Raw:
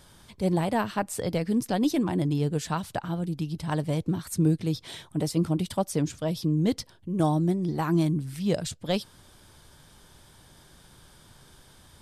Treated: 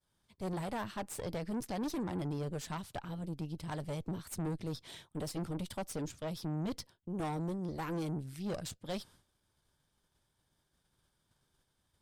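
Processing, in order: expander -43 dBFS; tube stage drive 28 dB, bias 0.75; gain -5 dB

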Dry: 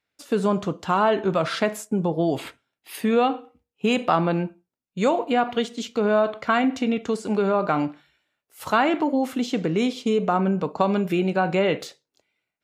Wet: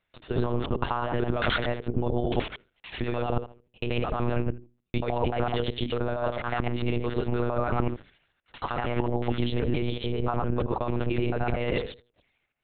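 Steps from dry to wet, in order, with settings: local time reversal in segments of 75 ms; notches 60/120/180/240/300/360/420/480 Hz; negative-ratio compressor -26 dBFS, ratio -1; monotone LPC vocoder at 8 kHz 120 Hz

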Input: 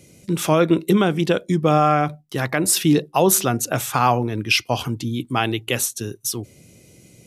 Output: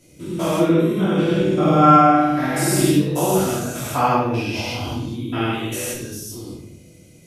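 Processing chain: stepped spectrum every 0.2 s; 1.34–2.88 flutter echo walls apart 8.6 m, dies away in 1.1 s; shoebox room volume 170 m³, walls mixed, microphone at 2.9 m; gain -8 dB

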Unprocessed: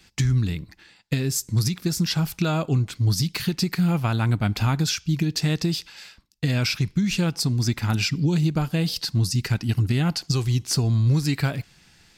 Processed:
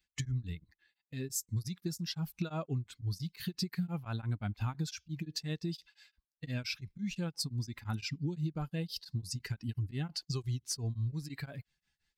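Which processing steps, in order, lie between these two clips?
per-bin expansion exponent 1.5; compressor 4:1, threshold -25 dBFS, peak gain reduction 7.5 dB; beating tremolo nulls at 5.8 Hz; gain -5.5 dB

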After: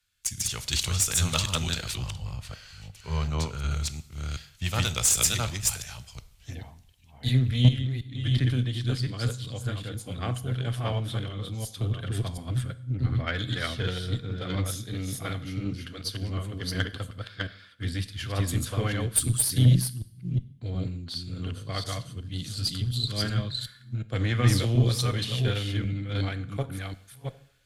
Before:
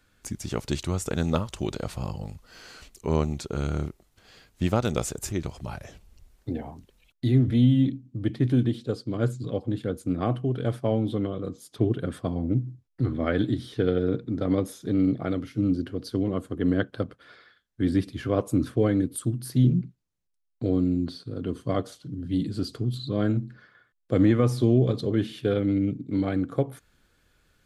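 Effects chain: reverse delay 0.364 s, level -1.5 dB; EQ curve 110 Hz 0 dB, 310 Hz -16 dB, 3000 Hz +8 dB; two-slope reverb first 0.7 s, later 1.9 s, from -23 dB, DRR 12.5 dB; added harmonics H 6 -23 dB, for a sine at -9 dBFS; 1.95–3.71 high shelf 4000 Hz -8.5 dB; 7.68–8.25 compressor 5:1, threshold -26 dBFS, peak gain reduction 7.5 dB; three-band expander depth 40%

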